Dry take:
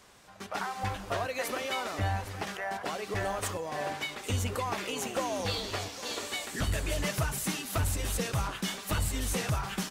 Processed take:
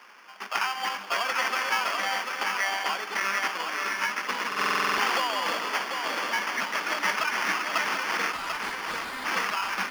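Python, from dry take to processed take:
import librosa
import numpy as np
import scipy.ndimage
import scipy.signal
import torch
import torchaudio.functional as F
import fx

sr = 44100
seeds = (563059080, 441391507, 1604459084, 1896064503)

y = fx.lower_of_two(x, sr, delay_ms=0.62, at=(3.12, 4.05))
y = fx.low_shelf(y, sr, hz=360.0, db=-9.5)
y = fx.sample_hold(y, sr, seeds[0], rate_hz=3900.0, jitter_pct=0)
y = scipy.signal.sosfilt(scipy.signal.butter(8, 190.0, 'highpass', fs=sr, output='sos'), y)
y = fx.band_shelf(y, sr, hz=2200.0, db=11.0, octaves=2.9)
y = fx.clip_hard(y, sr, threshold_db=-32.5, at=(8.31, 9.25))
y = y + 10.0 ** (-5.0 / 20.0) * np.pad(y, (int(741 * sr / 1000.0), 0))[:len(y)]
y = fx.buffer_glitch(y, sr, at_s=(4.47,), block=2048, repeats=10)
y = fx.env_flatten(y, sr, amount_pct=70, at=(4.57, 5.17), fade=0.02)
y = y * 10.0 ** (-1.0 / 20.0)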